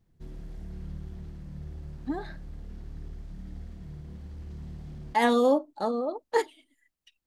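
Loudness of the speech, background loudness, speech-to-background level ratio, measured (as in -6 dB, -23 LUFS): -27.5 LUFS, -43.5 LUFS, 16.0 dB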